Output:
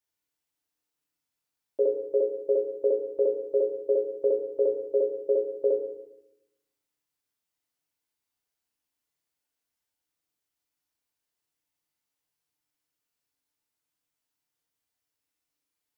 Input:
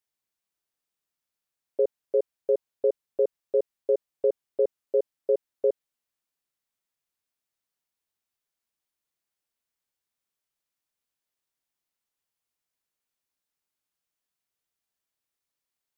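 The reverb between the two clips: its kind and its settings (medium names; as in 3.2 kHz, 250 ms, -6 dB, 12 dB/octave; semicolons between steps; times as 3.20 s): FDN reverb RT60 0.87 s, low-frequency decay 1.35×, high-frequency decay 1×, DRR -1.5 dB; trim -2.5 dB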